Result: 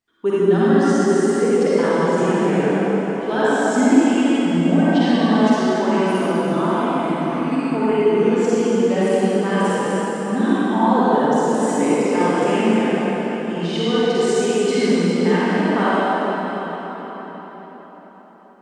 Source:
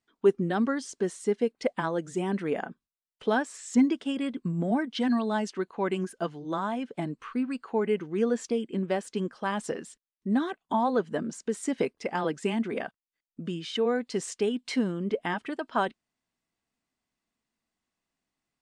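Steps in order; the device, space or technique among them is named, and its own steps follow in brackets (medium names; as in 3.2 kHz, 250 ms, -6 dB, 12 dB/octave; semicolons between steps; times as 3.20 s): cathedral (reverberation RT60 5.1 s, pre-delay 39 ms, DRR -11.5 dB)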